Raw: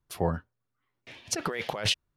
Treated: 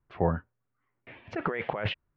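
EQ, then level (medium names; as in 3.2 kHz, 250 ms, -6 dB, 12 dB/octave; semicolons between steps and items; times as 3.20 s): low-pass 2.3 kHz 24 dB/octave; +1.5 dB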